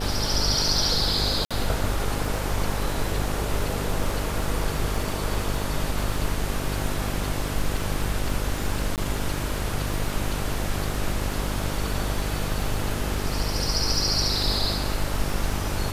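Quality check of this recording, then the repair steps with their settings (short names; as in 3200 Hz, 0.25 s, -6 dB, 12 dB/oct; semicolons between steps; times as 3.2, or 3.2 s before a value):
buzz 50 Hz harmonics 13 -30 dBFS
crackle 34/s -30 dBFS
1.45–1.51 gap 56 ms
8.96–8.98 gap 18 ms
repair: de-click; de-hum 50 Hz, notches 13; interpolate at 1.45, 56 ms; interpolate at 8.96, 18 ms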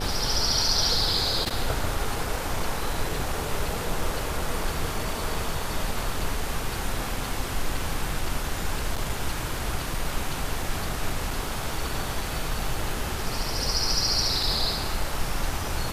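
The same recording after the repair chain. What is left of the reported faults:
none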